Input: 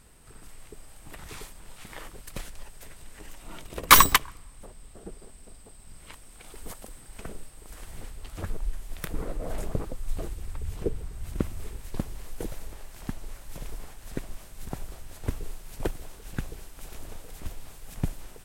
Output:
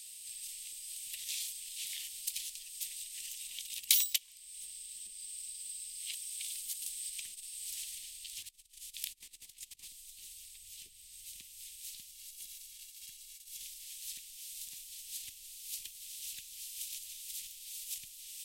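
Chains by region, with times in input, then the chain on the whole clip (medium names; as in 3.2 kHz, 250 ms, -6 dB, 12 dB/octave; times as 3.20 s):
6.87–9.88 s: compressor with a negative ratio -34 dBFS, ratio -0.5 + loudspeaker Doppler distortion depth 0.27 ms
12.11–13.61 s: expander -36 dBFS + compression 2.5:1, threshold -38 dBFS + comb 1.8 ms, depth 42%
whole clip: compression 3:1, threshold -42 dBFS; inverse Chebyshev high-pass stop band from 1.5 kHz, stop band 40 dB; trim +13 dB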